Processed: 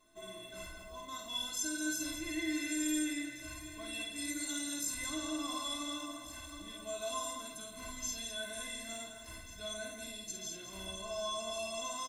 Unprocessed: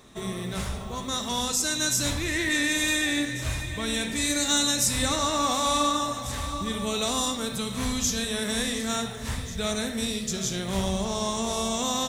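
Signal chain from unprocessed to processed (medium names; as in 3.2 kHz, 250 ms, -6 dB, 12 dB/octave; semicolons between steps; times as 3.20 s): inharmonic resonator 310 Hz, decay 0.25 s, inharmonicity 0.03; loudspeakers at several distances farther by 18 m -4 dB, 73 m -9 dB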